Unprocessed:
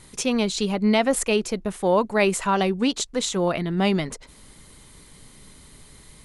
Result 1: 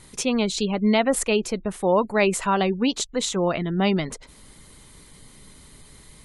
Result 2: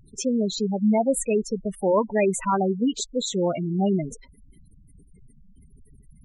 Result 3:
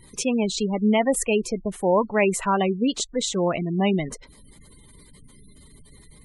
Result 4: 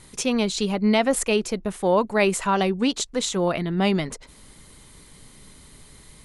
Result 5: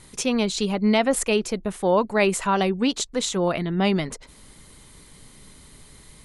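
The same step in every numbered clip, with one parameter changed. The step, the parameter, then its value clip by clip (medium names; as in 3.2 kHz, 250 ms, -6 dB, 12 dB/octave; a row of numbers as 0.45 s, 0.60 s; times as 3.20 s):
spectral gate, under each frame's peak: -35 dB, -10 dB, -20 dB, -60 dB, -50 dB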